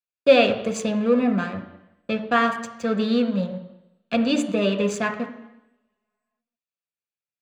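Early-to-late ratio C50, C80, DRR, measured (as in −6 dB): 10.0 dB, 12.0 dB, 5.0 dB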